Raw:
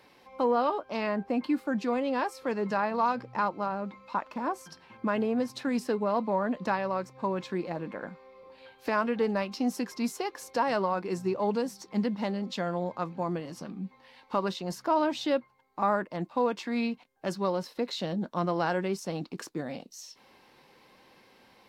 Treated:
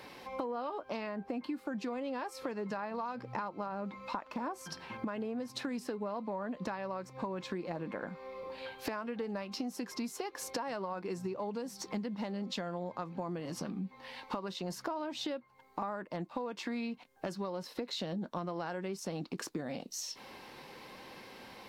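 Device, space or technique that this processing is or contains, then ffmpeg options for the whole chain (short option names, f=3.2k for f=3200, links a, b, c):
serial compression, leveller first: -af "acompressor=threshold=-32dB:ratio=2.5,acompressor=threshold=-45dB:ratio=4,volume=8dB"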